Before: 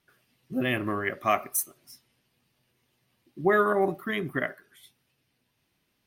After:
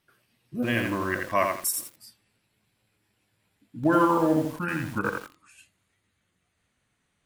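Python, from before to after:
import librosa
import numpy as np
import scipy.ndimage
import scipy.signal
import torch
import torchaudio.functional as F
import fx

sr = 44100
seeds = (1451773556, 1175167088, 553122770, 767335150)

y = fx.speed_glide(x, sr, from_pct=97, to_pct=70)
y = fx.echo_crushed(y, sr, ms=85, feedback_pct=35, bits=7, wet_db=-3.5)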